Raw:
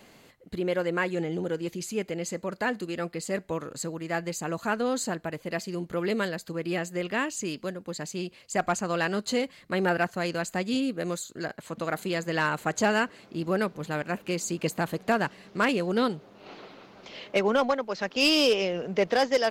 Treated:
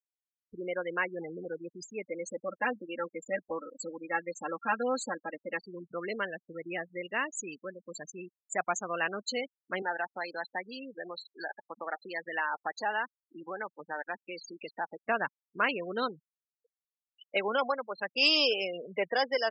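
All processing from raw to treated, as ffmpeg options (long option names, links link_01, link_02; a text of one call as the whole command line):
ffmpeg -i in.wav -filter_complex "[0:a]asettb=1/sr,asplit=3[link_01][link_02][link_03];[link_01]atrim=end=2.074[link_04];[link_02]atrim=start=2.07:end=5.59,asetpts=PTS-STARTPTS,afade=type=in:duration=0.004:curve=qsin,afade=type=out:start_time=3.516:duration=0.004:curve=qsin,equalizer=frequency=6800:width=0.96:gain=-6,aecho=1:1:3.7:0.93,atrim=end_sample=155232[link_05];[link_03]atrim=start=5.586[link_06];[link_04][link_05]acrossfade=duration=0.004:curve1=hsin:curve2=qsin[link_07];[link_07][link_06]acrossfade=duration=0.004:curve1=qsin:curve2=hsin,asettb=1/sr,asplit=3[link_08][link_09][link_10];[link_08]atrim=end=9.824[link_11];[link_09]atrim=start=9.82:end=15.04,asetpts=PTS-STARTPTS,afade=type=in:duration=0.004:curve=qsin,afade=type=out:start_time=5.216:duration=0.004:curve=qsin,acompressor=threshold=-29dB:ratio=3:attack=3.2:release=140:knee=1:detection=peak,highpass=230,equalizer=frequency=850:width_type=q:width=4:gain=10,equalizer=frequency=1800:width_type=q:width=4:gain=6,equalizer=frequency=4100:width_type=q:width=4:gain=6,lowpass=frequency=5600:width=0.5412,lowpass=frequency=5600:width=1.3066[link_12];[link_10]atrim=start=15.036[link_13];[link_11][link_12]acrossfade=duration=0.004:curve1=hsin:curve2=qsin[link_14];[link_14][link_13]acrossfade=duration=0.004:curve1=qsin:curve2=hsin,afftfilt=real='re*gte(hypot(re,im),0.0447)':imag='im*gte(hypot(re,im),0.0447)':win_size=1024:overlap=0.75,highpass=frequency=980:poles=1" out.wav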